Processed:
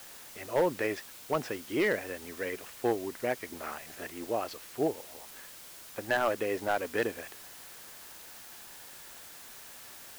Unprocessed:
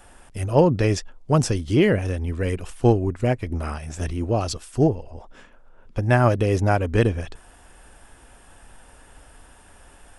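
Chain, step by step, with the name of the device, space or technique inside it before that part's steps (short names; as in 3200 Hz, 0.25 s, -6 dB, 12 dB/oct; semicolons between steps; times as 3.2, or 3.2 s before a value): drive-through speaker (BPF 380–3000 Hz; bell 1900 Hz +6 dB 0.58 oct; hard clip -13.5 dBFS, distortion -14 dB; white noise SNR 14 dB); gain -6.5 dB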